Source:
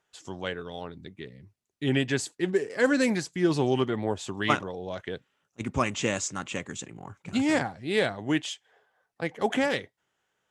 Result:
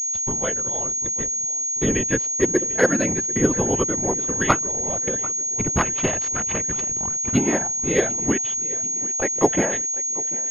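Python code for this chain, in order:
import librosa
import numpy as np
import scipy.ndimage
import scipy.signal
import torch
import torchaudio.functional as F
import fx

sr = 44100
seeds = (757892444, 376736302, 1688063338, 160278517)

p1 = fx.cycle_switch(x, sr, every=3, mode='inverted', at=(5.74, 7.31), fade=0.02)
p2 = fx.highpass(p1, sr, hz=330.0, slope=12, at=(8.32, 9.34))
p3 = fx.schmitt(p2, sr, flips_db=-35.5)
p4 = p2 + F.gain(torch.from_numpy(p3), -11.0).numpy()
p5 = fx.transient(p4, sr, attack_db=8, sustain_db=-11)
p6 = fx.whisperise(p5, sr, seeds[0])
p7 = p6 + fx.echo_feedback(p6, sr, ms=742, feedback_pct=55, wet_db=-19.5, dry=0)
y = fx.pwm(p7, sr, carrier_hz=6600.0)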